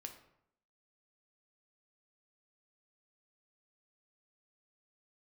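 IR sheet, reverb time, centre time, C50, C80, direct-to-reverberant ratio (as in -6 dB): 0.75 s, 16 ms, 9.0 dB, 12.5 dB, 4.0 dB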